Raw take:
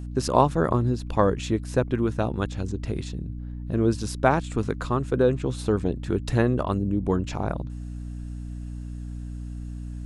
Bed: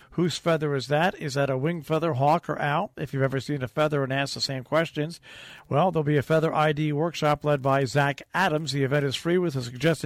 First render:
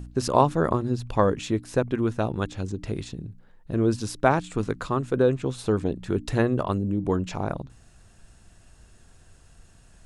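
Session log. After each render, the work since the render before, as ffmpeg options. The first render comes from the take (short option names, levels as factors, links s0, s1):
-af "bandreject=f=60:t=h:w=4,bandreject=f=120:t=h:w=4,bandreject=f=180:t=h:w=4,bandreject=f=240:t=h:w=4,bandreject=f=300:t=h:w=4"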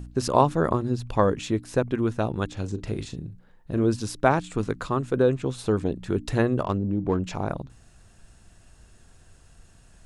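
-filter_complex "[0:a]asettb=1/sr,asplit=3[s0][s1][s2];[s0]atrim=end=2.534[s3];[s1]atrim=start=2.53:end=3.84,asetpts=PTS-STARTPTS,afade=t=in:d=0.004:c=qsin,afade=t=out:st=1.306:d=0.004:c=qsin,asplit=2[s4][s5];[s5]adelay=39,volume=0.282[s6];[s4][s6]amix=inputs=2:normalize=0,atrim=end_sample=57771[s7];[s2]atrim=start=3.836[s8];[s3][s7]acrossfade=d=0.004:c1=hsin:c2=qsin[s9];[s9][s8]acrossfade=d=0.004:c1=qsin:c2=hsin,asettb=1/sr,asplit=3[s10][s11][s12];[s10]atrim=end=6.634[s13];[s11]atrim=start=6.63:end=7.24,asetpts=PTS-STARTPTS,afade=t=in:d=0.004:c=qsin,afade=t=out:st=0.606:d=0.004:c=qsin,adynamicsmooth=sensitivity=4:basefreq=2100[s14];[s12]atrim=start=7.236[s15];[s13][s14]acrossfade=d=0.004:c1=hsin:c2=qsin[s16];[s16][s15]acrossfade=d=0.004:c1=qsin:c2=hsin"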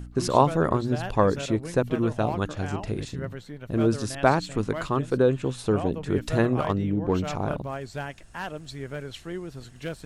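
-filter_complex "[1:a]volume=0.266[s0];[0:a][s0]amix=inputs=2:normalize=0"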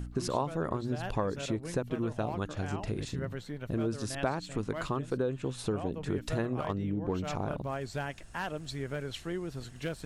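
-af "acompressor=threshold=0.0282:ratio=3"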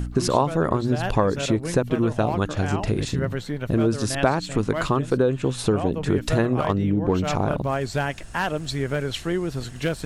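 -af "volume=3.55"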